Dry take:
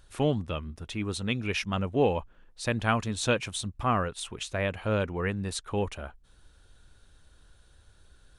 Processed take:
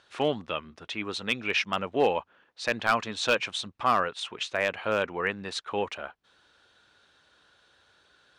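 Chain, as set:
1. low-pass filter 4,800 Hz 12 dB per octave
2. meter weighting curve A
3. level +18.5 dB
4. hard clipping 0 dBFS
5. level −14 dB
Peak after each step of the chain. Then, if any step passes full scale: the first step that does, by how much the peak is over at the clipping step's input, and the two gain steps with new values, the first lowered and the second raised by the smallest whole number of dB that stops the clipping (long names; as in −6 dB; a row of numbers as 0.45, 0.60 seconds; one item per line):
−10.0, −8.5, +10.0, 0.0, −14.0 dBFS
step 3, 10.0 dB
step 3 +8.5 dB, step 5 −4 dB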